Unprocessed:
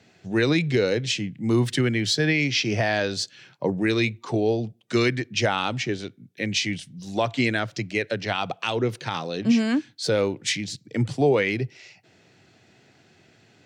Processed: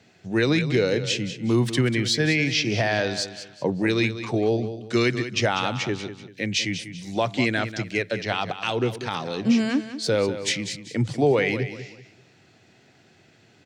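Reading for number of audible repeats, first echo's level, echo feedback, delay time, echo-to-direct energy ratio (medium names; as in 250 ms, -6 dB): 3, -11.5 dB, 32%, 193 ms, -11.0 dB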